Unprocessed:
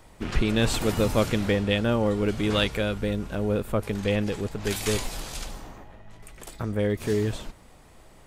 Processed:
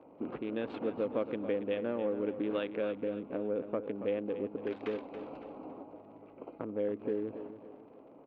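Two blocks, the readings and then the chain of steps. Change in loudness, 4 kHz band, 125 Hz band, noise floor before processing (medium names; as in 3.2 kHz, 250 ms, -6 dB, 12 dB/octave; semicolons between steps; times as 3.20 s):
-10.0 dB, -22.5 dB, -22.5 dB, -52 dBFS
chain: local Wiener filter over 25 samples; compression 3:1, threshold -35 dBFS, peak gain reduction 14 dB; crackle 57 per s -49 dBFS; cabinet simulation 280–2600 Hz, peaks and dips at 280 Hz +10 dB, 510 Hz +6 dB, 1.9 kHz -4 dB; feedback delay 279 ms, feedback 37%, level -11 dB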